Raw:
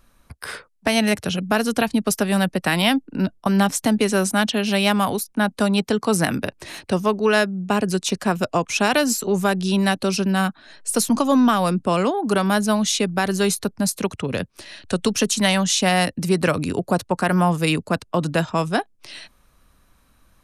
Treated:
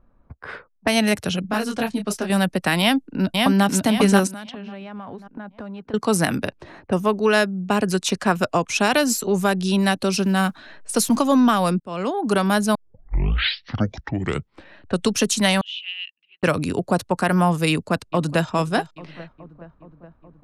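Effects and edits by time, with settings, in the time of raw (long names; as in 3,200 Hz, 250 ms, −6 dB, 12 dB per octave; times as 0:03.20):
0:01.42–0:02.30: micro pitch shift up and down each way 27 cents
0:02.80–0:03.65: delay throw 540 ms, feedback 40%, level −2 dB
0:04.27–0:05.94: downward compressor 20 to 1, threshold −30 dBFS
0:06.58–0:07.14: parametric band 1,900 Hz → 6,500 Hz −8 dB
0:07.82–0:08.56: parametric band 1,400 Hz +4 dB 1.7 octaves
0:10.14–0:11.29: mu-law and A-law mismatch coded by mu
0:11.80–0:12.22: fade in
0:12.75: tape start 2.03 s
0:15.61–0:16.43: flat-topped band-pass 2,900 Hz, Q 4.4
0:17.70–0:18.48: delay throw 420 ms, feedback 70%, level −16.5 dB
whole clip: low-pass that shuts in the quiet parts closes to 840 Hz, open at −19 dBFS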